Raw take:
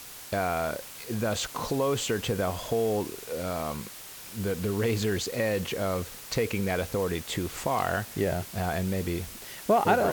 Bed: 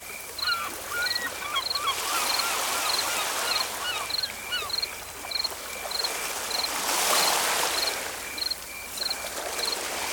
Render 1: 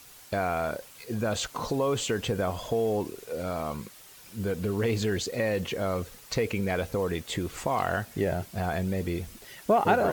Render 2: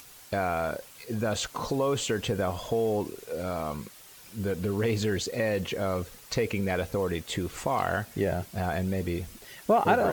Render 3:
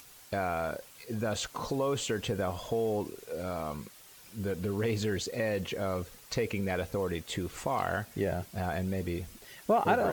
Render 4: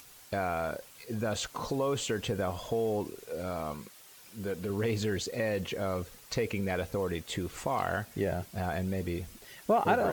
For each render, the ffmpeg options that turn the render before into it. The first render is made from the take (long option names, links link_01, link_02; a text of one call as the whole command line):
ffmpeg -i in.wav -af "afftdn=noise_reduction=8:noise_floor=-44" out.wav
ffmpeg -i in.wav -af "acompressor=mode=upward:threshold=-48dB:ratio=2.5" out.wav
ffmpeg -i in.wav -af "volume=-3.5dB" out.wav
ffmpeg -i in.wav -filter_complex "[0:a]asettb=1/sr,asplit=3[link_01][link_02][link_03];[link_01]atrim=end=3.744[link_04];[link_02]atrim=start=3.74:end=4.7,asetpts=PTS-STARTPTS,afade=type=in:duration=0.004:curve=qsin,afade=type=out:start_time=0.956:duration=0.004:curve=qsin,lowshelf=frequency=130:gain=-9[link_05];[link_03]atrim=start=4.696[link_06];[link_04][link_05]acrossfade=duration=0.004:curve1=hsin:curve2=qsin[link_07];[link_07][link_06]acrossfade=duration=0.004:curve1=qsin:curve2=hsin" out.wav